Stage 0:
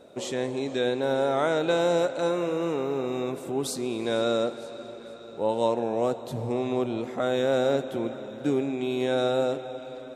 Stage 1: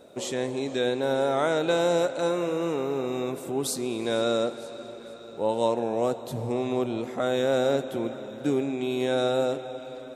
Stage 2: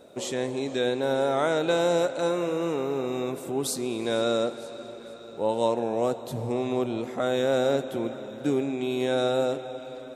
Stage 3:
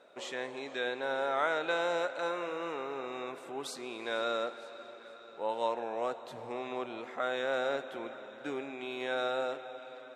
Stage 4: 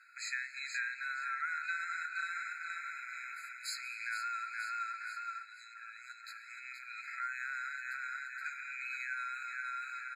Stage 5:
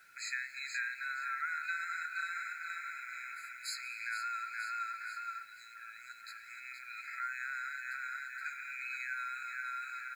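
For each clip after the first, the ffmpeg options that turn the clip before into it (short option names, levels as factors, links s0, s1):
-af "highshelf=f=8600:g=7.5"
-af anull
-af "bandpass=f=1600:t=q:w=1:csg=0"
-filter_complex "[0:a]asplit=2[s0][s1];[s1]aecho=0:1:473|946|1419|1892|2365:0.562|0.236|0.0992|0.0417|0.0175[s2];[s0][s2]amix=inputs=2:normalize=0,acompressor=threshold=0.0158:ratio=6,afftfilt=real='re*eq(mod(floor(b*sr/1024/1300),2),1)':imag='im*eq(mod(floor(b*sr/1024/1300),2),1)':win_size=1024:overlap=0.75,volume=2.37"
-af "acrusher=bits=10:mix=0:aa=0.000001"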